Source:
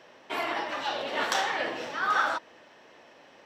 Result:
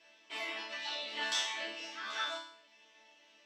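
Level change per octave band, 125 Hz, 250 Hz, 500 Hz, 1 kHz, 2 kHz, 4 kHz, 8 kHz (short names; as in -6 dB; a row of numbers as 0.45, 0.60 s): under -20 dB, -13.0 dB, -13.0 dB, -14.5 dB, -9.0 dB, -1.0 dB, -2.0 dB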